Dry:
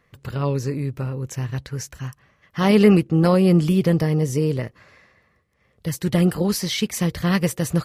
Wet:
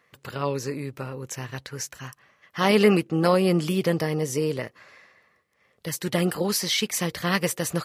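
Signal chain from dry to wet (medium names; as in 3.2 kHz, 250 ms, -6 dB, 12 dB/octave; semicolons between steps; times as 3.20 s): high-pass 500 Hz 6 dB/octave; trim +1.5 dB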